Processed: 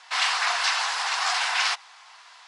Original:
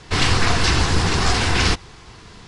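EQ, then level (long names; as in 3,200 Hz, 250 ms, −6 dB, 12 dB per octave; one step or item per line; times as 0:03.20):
Butterworth high-pass 730 Hz 36 dB per octave
high-shelf EQ 5,800 Hz −4.5 dB
−2.0 dB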